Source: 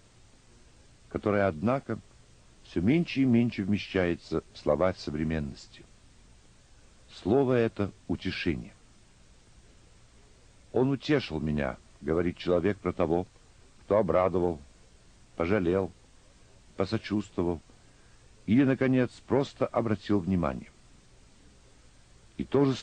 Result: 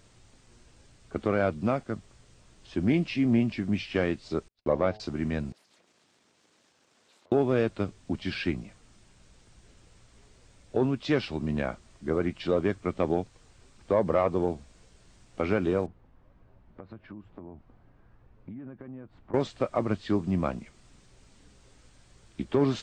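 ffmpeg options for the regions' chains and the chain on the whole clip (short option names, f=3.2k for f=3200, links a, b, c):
-filter_complex "[0:a]asettb=1/sr,asplit=3[a][b][c];[a]atrim=end=4.484[d];[b]atrim=start=4.48:end=5,asetpts=PTS-STARTPTS,afade=t=in:d=0.004:c=qsin,afade=t=out:st=0.516:d=0.004:c=qsin,lowpass=4.6k,agate=range=-41dB:threshold=-44dB:ratio=16:release=100:detection=peak,bandreject=f=106.7:t=h:w=4,bandreject=f=213.4:t=h:w=4,bandreject=f=320.1:t=h:w=4,bandreject=f=426.8:t=h:w=4,bandreject=f=533.5:t=h:w=4,bandreject=f=640.2:t=h:w=4,bandreject=f=746.9:t=h:w=4,bandreject=f=853.6:t=h:w=4[e];[c]atrim=start=4.996[f];[d][e]acrossfade=d=0.004:c1=hsin:c2=qsin[g];[g][f]acrossfade=d=0.004:c1=qsin:c2=hsin,asettb=1/sr,asplit=3[h][i][j];[h]atrim=end=5.524[k];[i]atrim=start=5.52:end=7.32,asetpts=PTS-STARTPTS,afade=t=in:d=0.004:c=qsin,afade=t=out:st=1.796:d=0.004:c=qsin,acompressor=threshold=-53dB:ratio=12:attack=3.2:release=140:knee=1:detection=peak,aeval=exprs='abs(val(0))':c=same,highpass=260,lowpass=7.4k[l];[j]atrim=start=7.316[m];[k][l]acrossfade=d=0.004:c1=hsin:c2=qsin[n];[n][m]acrossfade=d=0.004:c1=qsin:c2=hsin,asettb=1/sr,asplit=3[o][p][q];[o]atrim=end=15.864[r];[p]atrim=start=15.86:end=19.34,asetpts=PTS-STARTPTS,afade=t=in:d=0.004:c=qsin,afade=t=out:st=3.476:d=0.004:c=qsin,acompressor=threshold=-38dB:ratio=8:attack=3.2:release=140:knee=1:detection=peak,lowpass=1.2k,equalizer=f=440:t=o:w=0.82:g=-4[s];[q]atrim=start=19.336[t];[r][s]acrossfade=d=0.004:c1=hsin:c2=qsin[u];[u][t]acrossfade=d=0.004:c1=qsin:c2=hsin"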